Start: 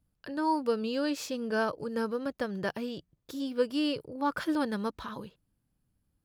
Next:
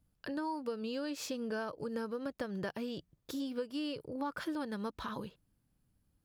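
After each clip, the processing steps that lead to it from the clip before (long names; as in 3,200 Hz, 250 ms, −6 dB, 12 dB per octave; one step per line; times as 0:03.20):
downward compressor 6 to 1, threshold −36 dBFS, peak gain reduction 14 dB
level +1 dB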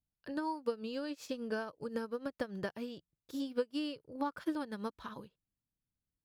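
expander for the loud parts 2.5 to 1, over −48 dBFS
level +5.5 dB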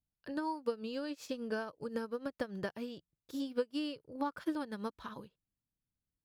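no processing that can be heard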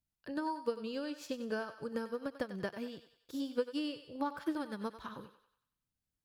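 feedback echo with a high-pass in the loop 94 ms, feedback 50%, high-pass 610 Hz, level −10.5 dB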